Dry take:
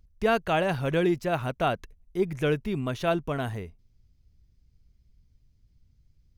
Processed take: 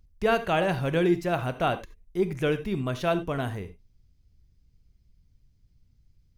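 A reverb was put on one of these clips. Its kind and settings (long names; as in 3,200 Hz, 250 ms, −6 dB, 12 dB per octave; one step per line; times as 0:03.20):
reverb whose tail is shaped and stops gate 110 ms flat, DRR 10.5 dB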